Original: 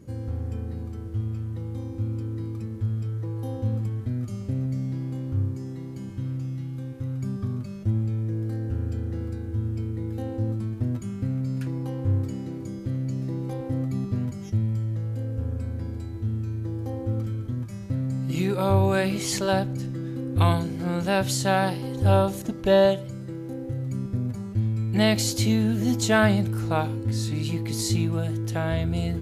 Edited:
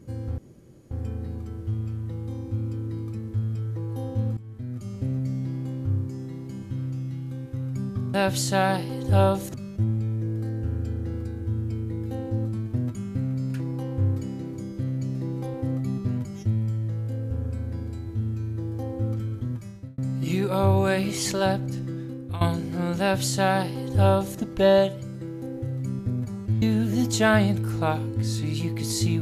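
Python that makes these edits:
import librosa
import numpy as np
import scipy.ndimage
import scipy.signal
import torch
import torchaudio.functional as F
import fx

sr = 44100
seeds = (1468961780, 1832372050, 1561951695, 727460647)

y = fx.edit(x, sr, fx.insert_room_tone(at_s=0.38, length_s=0.53),
    fx.fade_in_from(start_s=3.84, length_s=0.67, floor_db=-16.0),
    fx.fade_out_span(start_s=17.61, length_s=0.44),
    fx.fade_out_to(start_s=19.98, length_s=0.5, floor_db=-16.5),
    fx.duplicate(start_s=21.07, length_s=1.4, to_s=7.61),
    fx.cut(start_s=24.69, length_s=0.82), tone=tone)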